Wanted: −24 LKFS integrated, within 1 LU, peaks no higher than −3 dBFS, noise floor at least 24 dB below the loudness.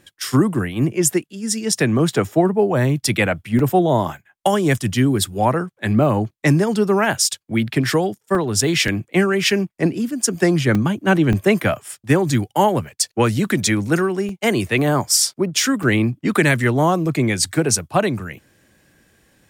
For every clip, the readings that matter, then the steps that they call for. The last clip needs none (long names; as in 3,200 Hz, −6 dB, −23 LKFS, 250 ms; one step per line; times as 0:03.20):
number of dropouts 8; longest dropout 2.6 ms; integrated loudness −18.5 LKFS; sample peak −3.0 dBFS; target loudness −24.0 LKFS
→ repair the gap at 0:03.59/0:08.35/0:08.88/0:10.75/0:11.33/0:14.29/0:15.27/0:15.83, 2.6 ms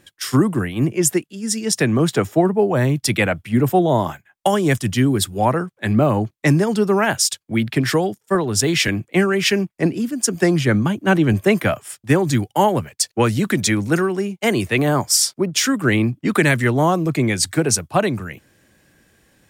number of dropouts 0; integrated loudness −18.5 LKFS; sample peak −3.0 dBFS; target loudness −24.0 LKFS
→ level −5.5 dB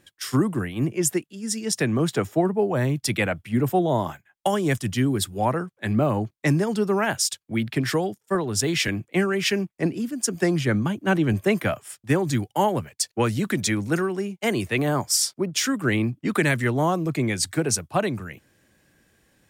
integrated loudness −24.0 LKFS; sample peak −8.5 dBFS; background noise floor −72 dBFS